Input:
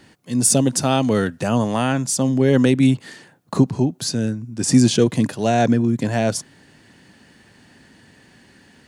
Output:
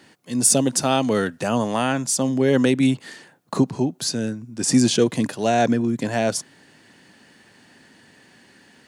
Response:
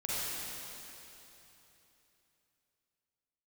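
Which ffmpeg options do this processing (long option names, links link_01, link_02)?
-af "highpass=frequency=240:poles=1"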